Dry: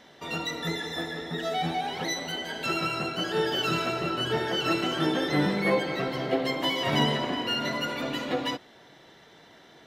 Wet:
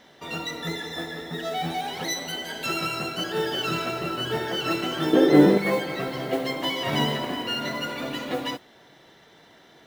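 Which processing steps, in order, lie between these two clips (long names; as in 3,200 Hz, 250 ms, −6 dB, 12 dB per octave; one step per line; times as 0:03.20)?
0:01.70–0:03.24: high-shelf EQ 6,900 Hz +10 dB
noise that follows the level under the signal 23 dB
0:05.13–0:05.58: parametric band 380 Hz +14.5 dB 1.6 octaves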